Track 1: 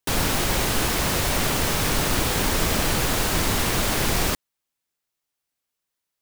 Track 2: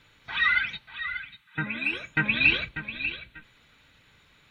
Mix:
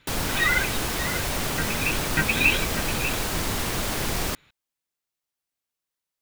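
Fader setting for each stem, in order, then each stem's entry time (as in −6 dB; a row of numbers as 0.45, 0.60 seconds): −4.5, 0.0 decibels; 0.00, 0.00 seconds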